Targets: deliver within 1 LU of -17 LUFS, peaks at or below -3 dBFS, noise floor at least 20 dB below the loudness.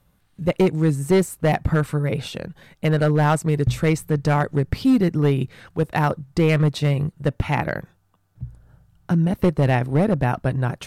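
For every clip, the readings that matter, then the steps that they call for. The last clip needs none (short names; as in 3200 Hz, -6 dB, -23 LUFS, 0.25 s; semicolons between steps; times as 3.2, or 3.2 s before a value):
clipped 1.5%; flat tops at -11.0 dBFS; loudness -21.0 LUFS; peak -11.0 dBFS; loudness target -17.0 LUFS
-> clip repair -11 dBFS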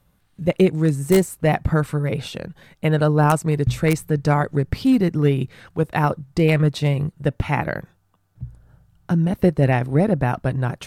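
clipped 0.0%; loudness -20.5 LUFS; peak -2.0 dBFS; loudness target -17.0 LUFS
-> gain +3.5 dB; limiter -3 dBFS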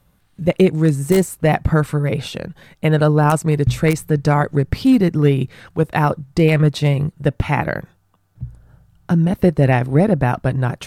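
loudness -17.5 LUFS; peak -3.0 dBFS; noise floor -60 dBFS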